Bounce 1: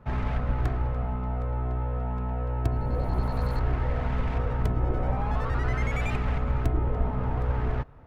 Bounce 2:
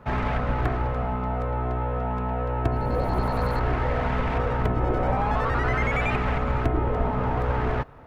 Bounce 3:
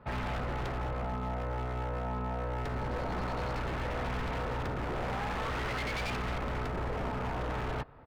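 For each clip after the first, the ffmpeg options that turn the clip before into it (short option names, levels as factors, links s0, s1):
-filter_complex "[0:a]acrossover=split=3200[s0][s1];[s1]acompressor=threshold=0.00141:ratio=4:attack=1:release=60[s2];[s0][s2]amix=inputs=2:normalize=0,lowshelf=f=180:g=-10,volume=2.66"
-af "aresample=11025,aresample=44100,aeval=exprs='0.0794*(abs(mod(val(0)/0.0794+3,4)-2)-1)':c=same,volume=0.447"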